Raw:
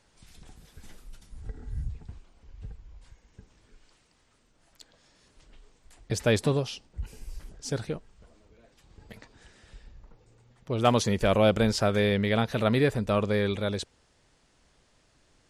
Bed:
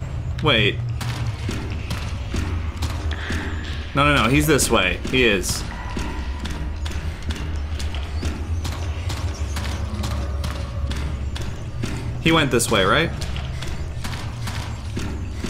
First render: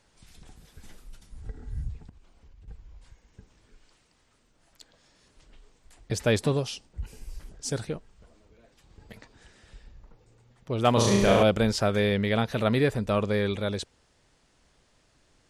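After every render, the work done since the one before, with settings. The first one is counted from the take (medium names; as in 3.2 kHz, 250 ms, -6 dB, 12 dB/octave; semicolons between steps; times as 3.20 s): 2.09–2.68 s: compression 12:1, threshold -48 dBFS; 6.56–7.85 s: dynamic bell 8.8 kHz, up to +7 dB, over -56 dBFS, Q 0.98; 10.93–11.43 s: flutter echo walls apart 6 m, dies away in 1.1 s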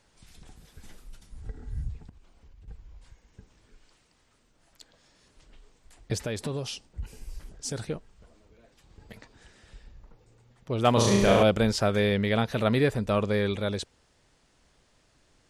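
6.16–7.85 s: compression, threshold -28 dBFS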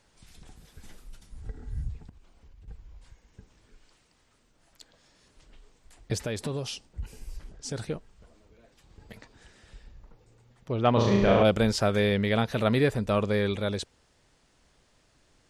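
7.37–7.78 s: distance through air 51 m; 10.72–11.45 s: distance through air 220 m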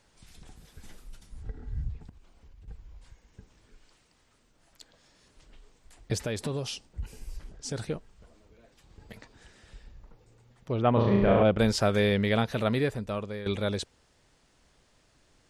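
1.43–2.01 s: distance through air 92 m; 10.82–11.59 s: distance through air 360 m; 12.31–13.46 s: fade out, to -13.5 dB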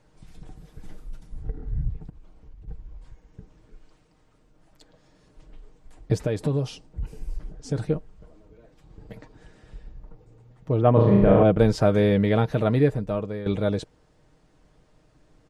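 tilt shelf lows +7 dB, about 1.3 kHz; comb 6.5 ms, depth 44%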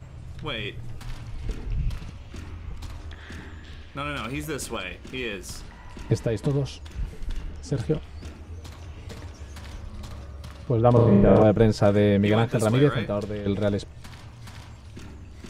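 add bed -14.5 dB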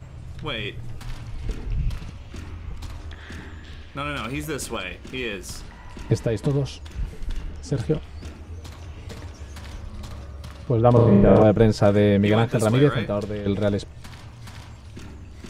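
trim +2 dB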